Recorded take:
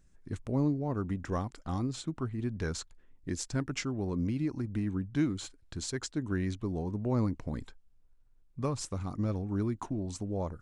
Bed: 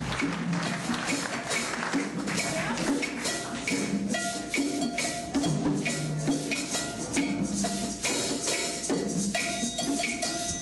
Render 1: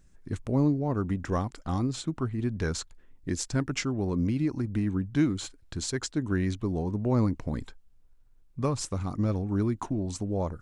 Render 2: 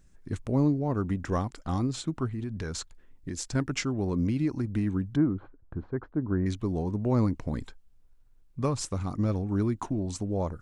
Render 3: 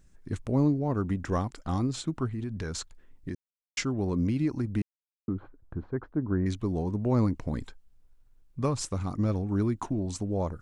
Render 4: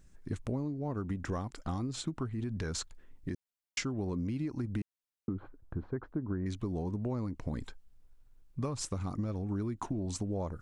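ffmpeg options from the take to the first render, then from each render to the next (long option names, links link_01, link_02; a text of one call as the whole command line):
ffmpeg -i in.wav -af "volume=4.5dB" out.wav
ffmpeg -i in.wav -filter_complex "[0:a]asettb=1/sr,asplit=3[link_01][link_02][link_03];[link_01]atrim=end=2.274[link_04];[link_02]atrim=start=2.27:end=3.55,asetpts=PTS-STARTPTS,afade=type=in:duration=0.004:curve=qsin,afade=type=out:start_time=1.276:duration=0.004:curve=qsin,acompressor=threshold=-30dB:ratio=6:attack=3.2:release=140:knee=1:detection=peak[link_05];[link_03]atrim=start=3.546[link_06];[link_04][link_05]acrossfade=duration=0.004:curve1=hsin:curve2=qsin[link_07];[link_07][link_06]acrossfade=duration=0.004:curve1=qsin:curve2=hsin,asettb=1/sr,asplit=3[link_08][link_09][link_10];[link_08]atrim=end=5.164[link_11];[link_09]atrim=start=5.16:end=6.46,asetpts=PTS-STARTPTS,afade=type=in:duration=0.004:curve=qsin,afade=type=out:start_time=1.296:duration=0.004:curve=qsin,lowpass=frequency=1300:width=0.5412,lowpass=frequency=1300:width=1.3066[link_12];[link_10]atrim=start=6.456[link_13];[link_11][link_12]acrossfade=duration=0.004:curve1=hsin:curve2=qsin[link_14];[link_14][link_13]acrossfade=duration=0.004:curve1=qsin:curve2=hsin" out.wav
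ffmpeg -i in.wav -filter_complex "[0:a]asplit=5[link_01][link_02][link_03][link_04][link_05];[link_01]atrim=end=3.35,asetpts=PTS-STARTPTS,afade=type=out:start_time=3.346:duration=0.004:curve=hsin[link_06];[link_02]atrim=start=3.35:end=3.77,asetpts=PTS-STARTPTS,volume=0[link_07];[link_03]atrim=start=3.77:end=4.82,asetpts=PTS-STARTPTS,afade=type=in:duration=0.004:curve=hsin,afade=type=out:start_time=1.046:duration=0.004:curve=hsin[link_08];[link_04]atrim=start=4.82:end=5.28,asetpts=PTS-STARTPTS,volume=0[link_09];[link_05]atrim=start=5.28,asetpts=PTS-STARTPTS,afade=type=in:duration=0.004:curve=hsin[link_10];[link_06][link_07][link_08][link_09][link_10]concat=n=5:v=0:a=1" out.wav
ffmpeg -i in.wav -af "acompressor=threshold=-31dB:ratio=12" out.wav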